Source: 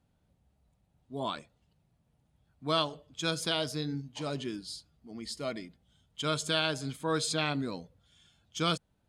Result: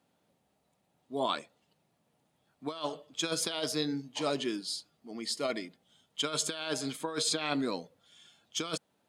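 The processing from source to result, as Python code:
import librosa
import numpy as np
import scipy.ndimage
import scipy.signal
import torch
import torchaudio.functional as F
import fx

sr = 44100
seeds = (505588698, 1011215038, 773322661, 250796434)

y = scipy.signal.sosfilt(scipy.signal.butter(2, 280.0, 'highpass', fs=sr, output='sos'), x)
y = fx.notch(y, sr, hz=1500.0, q=26.0)
y = fx.over_compress(y, sr, threshold_db=-34.0, ratio=-0.5)
y = y * librosa.db_to_amplitude(3.0)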